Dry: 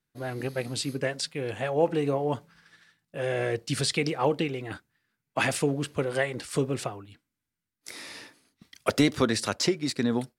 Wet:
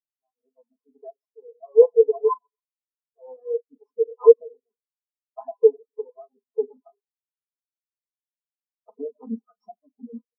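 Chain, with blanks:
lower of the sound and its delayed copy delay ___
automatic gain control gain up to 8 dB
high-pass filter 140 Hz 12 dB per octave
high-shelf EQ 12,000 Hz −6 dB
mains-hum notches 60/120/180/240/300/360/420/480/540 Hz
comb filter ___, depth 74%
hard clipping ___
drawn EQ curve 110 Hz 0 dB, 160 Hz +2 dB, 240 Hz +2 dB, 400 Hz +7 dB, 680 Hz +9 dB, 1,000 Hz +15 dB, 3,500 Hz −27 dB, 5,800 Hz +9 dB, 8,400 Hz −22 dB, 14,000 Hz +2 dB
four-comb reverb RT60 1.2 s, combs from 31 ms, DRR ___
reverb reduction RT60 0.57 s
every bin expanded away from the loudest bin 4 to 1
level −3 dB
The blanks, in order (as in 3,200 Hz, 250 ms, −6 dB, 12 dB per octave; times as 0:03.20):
4.1 ms, 4.7 ms, −11.5 dBFS, 3.5 dB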